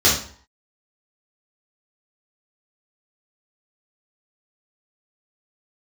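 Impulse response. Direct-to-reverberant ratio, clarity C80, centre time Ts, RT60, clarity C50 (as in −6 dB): −8.0 dB, 10.0 dB, 36 ms, 0.50 s, 4.5 dB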